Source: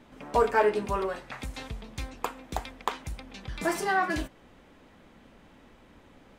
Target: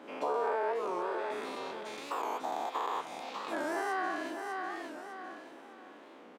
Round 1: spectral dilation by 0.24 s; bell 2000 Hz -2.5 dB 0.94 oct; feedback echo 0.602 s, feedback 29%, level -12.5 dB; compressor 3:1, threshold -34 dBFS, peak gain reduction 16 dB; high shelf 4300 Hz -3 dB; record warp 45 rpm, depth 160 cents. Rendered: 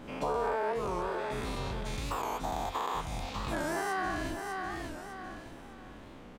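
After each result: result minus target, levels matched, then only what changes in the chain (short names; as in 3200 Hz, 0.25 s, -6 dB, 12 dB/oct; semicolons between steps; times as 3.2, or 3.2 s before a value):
8000 Hz band +5.5 dB; 250 Hz band +2.5 dB
change: high shelf 4300 Hz -11.5 dB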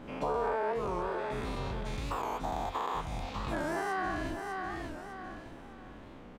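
250 Hz band +3.0 dB
add after compressor: HPF 290 Hz 24 dB/oct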